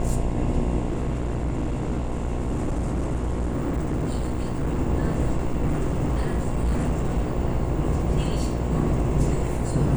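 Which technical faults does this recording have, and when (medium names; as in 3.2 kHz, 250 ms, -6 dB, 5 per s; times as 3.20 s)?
buzz 60 Hz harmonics 18 -28 dBFS
0.88–4.79 s: clipped -21.5 dBFS
5.37–7.33 s: clipped -18.5 dBFS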